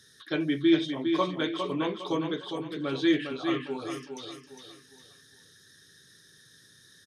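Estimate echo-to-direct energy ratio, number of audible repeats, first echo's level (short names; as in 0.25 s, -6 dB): -5.5 dB, 4, -6.0 dB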